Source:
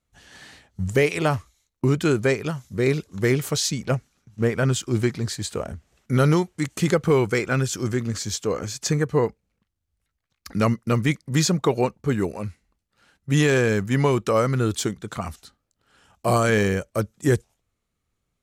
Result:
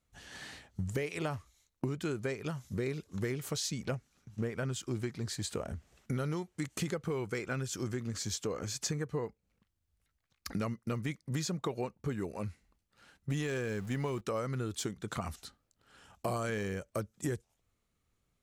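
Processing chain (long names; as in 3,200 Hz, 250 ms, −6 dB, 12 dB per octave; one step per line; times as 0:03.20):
0:13.30–0:14.21: converter with a step at zero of −34.5 dBFS
downward compressor 5 to 1, threshold −32 dBFS, peak gain reduction 16 dB
level −1.5 dB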